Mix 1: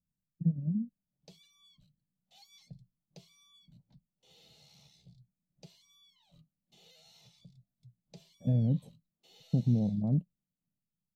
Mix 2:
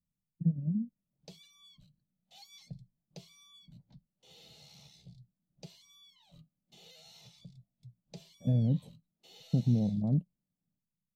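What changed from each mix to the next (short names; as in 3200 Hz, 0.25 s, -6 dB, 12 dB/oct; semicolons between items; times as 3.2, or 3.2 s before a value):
background +4.5 dB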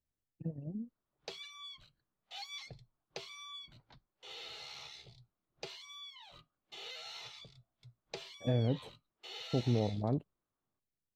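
master: remove EQ curve 100 Hz 0 dB, 180 Hz +14 dB, 390 Hz -11 dB, 580 Hz -5 dB, 1300 Hz -21 dB, 12000 Hz +3 dB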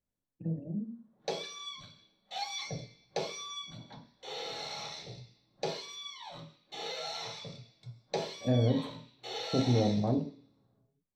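reverb: on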